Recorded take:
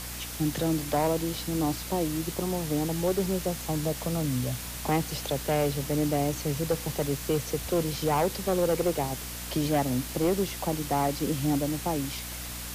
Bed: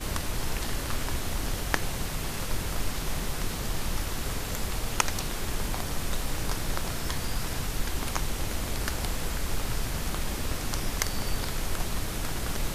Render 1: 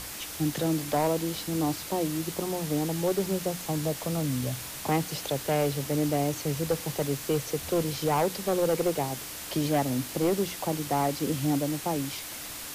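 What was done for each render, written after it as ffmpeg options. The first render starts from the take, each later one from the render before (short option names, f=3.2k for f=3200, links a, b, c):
-af "bandreject=f=60:t=h:w=6,bandreject=f=120:t=h:w=6,bandreject=f=180:t=h:w=6,bandreject=f=240:t=h:w=6"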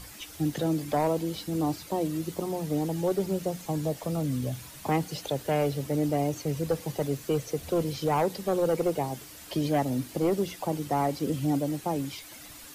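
-af "afftdn=nr=10:nf=-39"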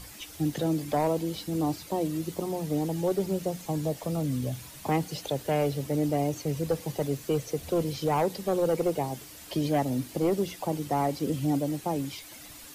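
-af "equalizer=f=1.4k:t=o:w=0.77:g=-2"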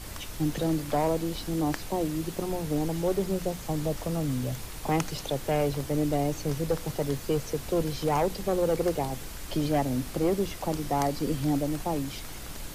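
-filter_complex "[1:a]volume=-10dB[a];[0:a][a]amix=inputs=2:normalize=0"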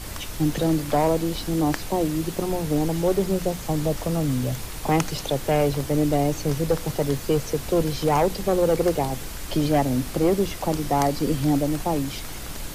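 -af "volume=5.5dB"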